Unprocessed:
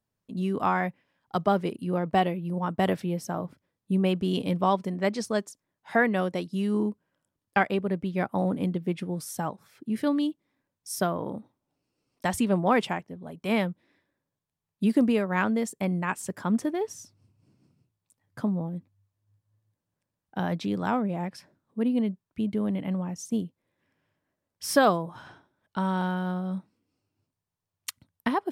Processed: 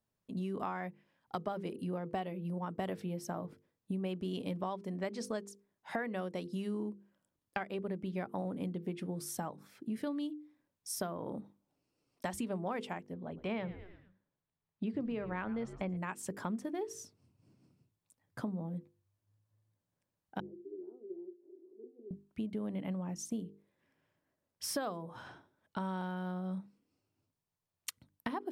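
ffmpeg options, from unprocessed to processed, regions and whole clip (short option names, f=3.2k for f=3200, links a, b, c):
-filter_complex "[0:a]asettb=1/sr,asplit=3[a][b][c];[a]atrim=end=13.144[d];[b]atrim=start=13.14:end=15.97,asetpts=PTS-STARTPTS,afade=t=in:d=0.004:c=qsin,afade=t=out:st=2.826:d=0.004:c=qsin,lowpass=3.4k,asplit=5[e][f][g][h][i];[f]adelay=113,afreqshift=-92,volume=-17dB[j];[g]adelay=226,afreqshift=-184,volume=-23.9dB[k];[h]adelay=339,afreqshift=-276,volume=-30.9dB[l];[i]adelay=452,afreqshift=-368,volume=-37.8dB[m];[e][j][k][l][m]amix=inputs=5:normalize=0,atrim=end_sample=124803[n];[c]atrim=start=15.966[o];[d][n]acrossfade=d=0.004:c1=hsin:c2=qsin[p];[p][o]acrossfade=d=0.004:c1=qsin:c2=hsin,asettb=1/sr,asplit=3[q][r][s];[q]atrim=end=20.404[t];[r]atrim=start=20.4:end=22.11,asetpts=PTS-STARTPTS,afade=t=in:d=0.004:c=qsin,afade=t=out:st=1.706:d=0.004:c=qsin,aeval=exprs='val(0)+0.5*0.0188*sgn(val(0))':c=same,asuperpass=centerf=370:order=4:qfactor=7.9[u];[s]atrim=start=22.106[v];[t][u]acrossfade=d=0.004:c1=hsin:c2=qsin[w];[w][v]acrossfade=d=0.004:c1=qsin:c2=hsin,bandreject=f=50:t=h:w=6,bandreject=f=100:t=h:w=6,bandreject=f=150:t=h:w=6,bandreject=f=200:t=h:w=6,bandreject=f=250:t=h:w=6,bandreject=f=300:t=h:w=6,bandreject=f=350:t=h:w=6,bandreject=f=400:t=h:w=6,bandreject=f=450:t=h:w=6,bandreject=f=500:t=h:w=6,acompressor=threshold=-33dB:ratio=6,equalizer=f=400:t=o:w=1.8:g=2,volume=-3dB"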